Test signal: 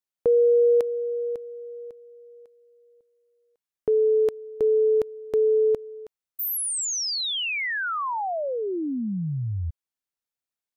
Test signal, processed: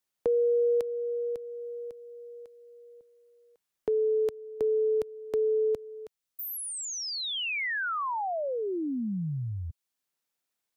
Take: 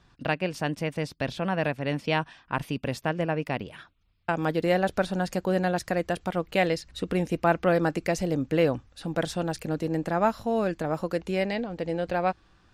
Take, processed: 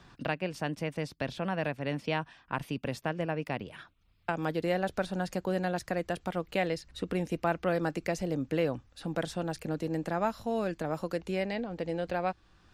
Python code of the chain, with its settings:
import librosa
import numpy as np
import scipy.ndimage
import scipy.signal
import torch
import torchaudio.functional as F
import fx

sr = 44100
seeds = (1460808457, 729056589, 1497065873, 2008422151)

y = fx.band_squash(x, sr, depth_pct=40)
y = F.gain(torch.from_numpy(y), -5.5).numpy()